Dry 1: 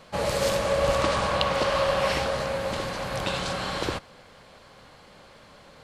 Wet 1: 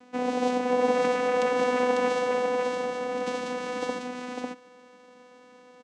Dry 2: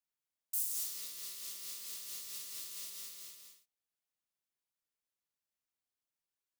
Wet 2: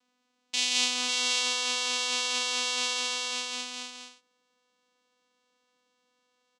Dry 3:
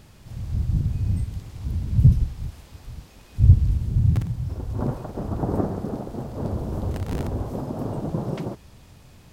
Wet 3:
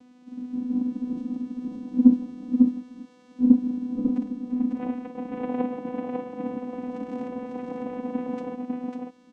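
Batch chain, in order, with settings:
channel vocoder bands 4, saw 249 Hz
on a send: single-tap delay 548 ms −3 dB
on the sum: loudness normalisation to −27 LKFS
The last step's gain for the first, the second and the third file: −0.5, +18.5, +0.5 decibels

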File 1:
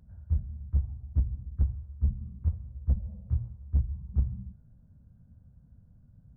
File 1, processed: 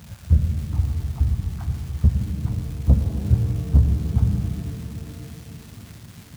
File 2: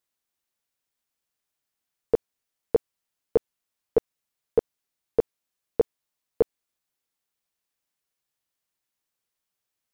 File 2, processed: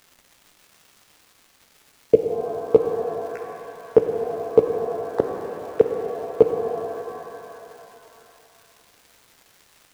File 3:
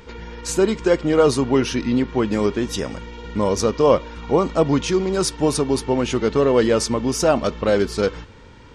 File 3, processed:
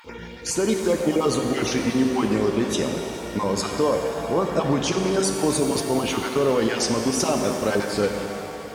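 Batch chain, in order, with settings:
time-frequency cells dropped at random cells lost 24%
high-pass filter 100 Hz 12 dB per octave
brickwall limiter −13.5 dBFS
surface crackle 560 per second −53 dBFS
reverb with rising layers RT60 3 s, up +7 semitones, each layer −8 dB, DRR 3.5 dB
loudness normalisation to −23 LKFS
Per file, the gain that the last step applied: +17.0, +10.5, +0.5 decibels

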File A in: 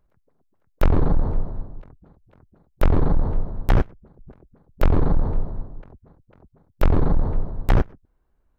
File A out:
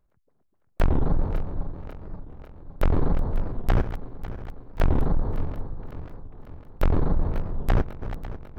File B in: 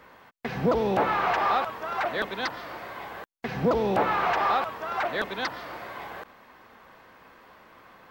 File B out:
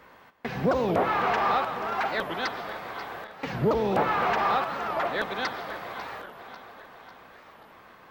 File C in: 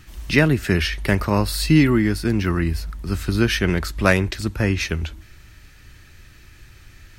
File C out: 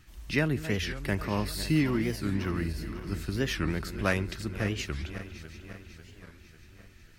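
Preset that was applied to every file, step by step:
feedback delay that plays each chunk backwards 273 ms, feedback 73%, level −12 dB
wow of a warped record 45 rpm, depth 250 cents
normalise the peak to −12 dBFS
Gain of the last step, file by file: −4.0, −0.5, −11.0 decibels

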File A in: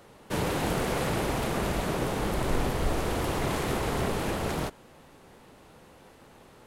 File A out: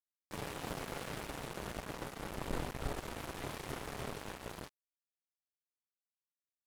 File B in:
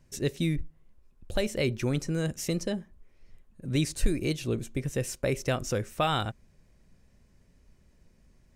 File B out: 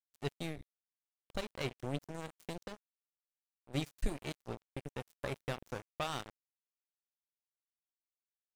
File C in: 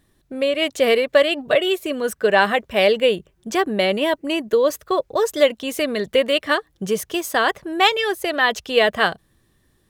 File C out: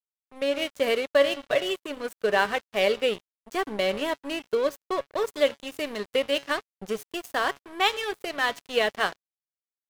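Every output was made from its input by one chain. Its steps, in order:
tuned comb filter 140 Hz, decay 0.65 s, harmonics all, mix 60%
dead-zone distortion −35 dBFS
level +1 dB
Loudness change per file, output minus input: −13.5, −12.0, −7.5 LU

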